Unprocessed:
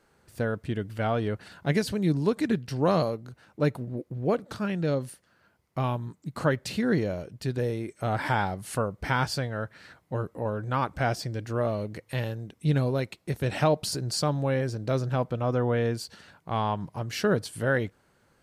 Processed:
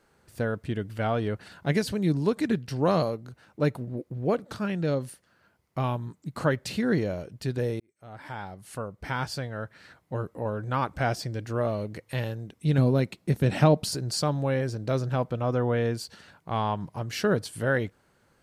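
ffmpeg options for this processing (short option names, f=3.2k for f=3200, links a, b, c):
-filter_complex "[0:a]asettb=1/sr,asplit=3[a][b][c];[a]atrim=end=12.784[d];[b]atrim=start=12.78:end=13.84,asetpts=PTS-STARTPTS,afade=t=in:d=0.004:c=qsin,afade=t=out:st=1.056:d=0.004:c=qsin,equalizer=f=200:w=0.89:g=8.5[e];[c]atrim=start=13.836[f];[d][e]acrossfade=d=0.004:c1=hsin:c2=qsin[g];[g][f]acrossfade=d=0.004:c1=qsin:c2=hsin,asplit=2[h][i];[h]atrim=end=7.8,asetpts=PTS-STARTPTS,afade=t=out:st=7.796:d=0.004:c=hsin[j];[i]atrim=start=7.8,asetpts=PTS-STARTPTS,afade=t=in:d=3.34:c=qsin[k];[j][k]concat=n=2:v=0:a=1"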